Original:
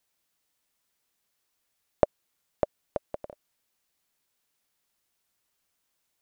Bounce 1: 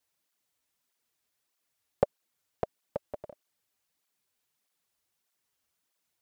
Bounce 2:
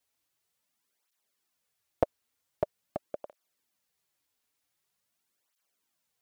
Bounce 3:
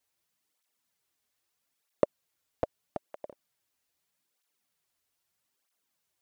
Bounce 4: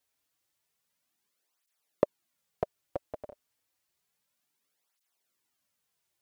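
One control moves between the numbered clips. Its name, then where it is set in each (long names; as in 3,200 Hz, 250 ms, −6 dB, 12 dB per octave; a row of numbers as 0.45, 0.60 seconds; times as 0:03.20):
through-zero flanger with one copy inverted, nulls at: 1.6, 0.45, 0.79, 0.3 Hertz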